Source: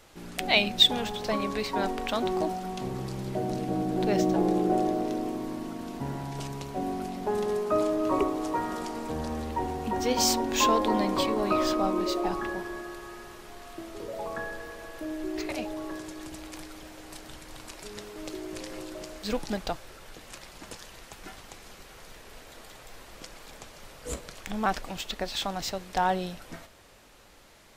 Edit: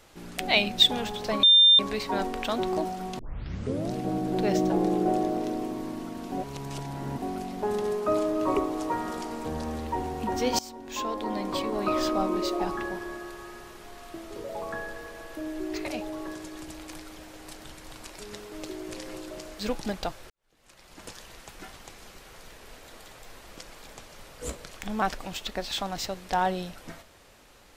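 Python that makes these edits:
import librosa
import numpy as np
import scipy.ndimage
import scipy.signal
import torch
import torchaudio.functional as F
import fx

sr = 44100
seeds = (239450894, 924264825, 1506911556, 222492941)

y = fx.edit(x, sr, fx.insert_tone(at_s=1.43, length_s=0.36, hz=3600.0, db=-13.0),
    fx.tape_start(start_s=2.83, length_s=0.73),
    fx.reverse_span(start_s=5.96, length_s=0.9),
    fx.fade_in_from(start_s=10.23, length_s=1.53, floor_db=-21.5),
    fx.fade_in_span(start_s=19.94, length_s=0.79, curve='qua'), tone=tone)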